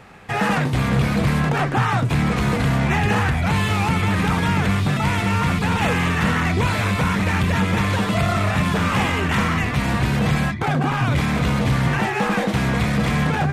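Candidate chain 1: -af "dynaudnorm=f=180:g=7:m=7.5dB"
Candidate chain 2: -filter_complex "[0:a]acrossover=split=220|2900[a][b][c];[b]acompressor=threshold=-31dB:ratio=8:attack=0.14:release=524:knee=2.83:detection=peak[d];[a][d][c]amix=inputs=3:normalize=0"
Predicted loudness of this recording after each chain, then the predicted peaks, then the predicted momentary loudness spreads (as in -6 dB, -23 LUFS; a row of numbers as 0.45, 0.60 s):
-14.5, -23.0 LUFS; -2.0, -10.0 dBFS; 2, 3 LU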